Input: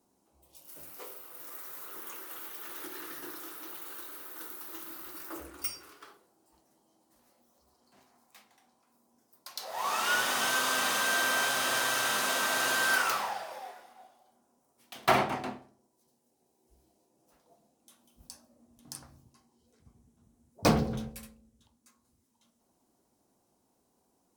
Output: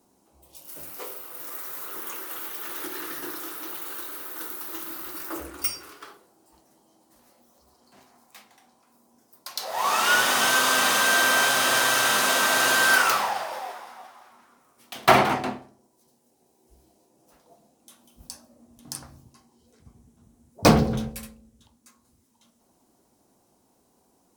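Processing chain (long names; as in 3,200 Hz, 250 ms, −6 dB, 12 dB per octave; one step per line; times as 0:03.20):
0:13.18–0:15.33: echo with shifted repeats 172 ms, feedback 60%, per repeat +84 Hz, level −13 dB
level +8 dB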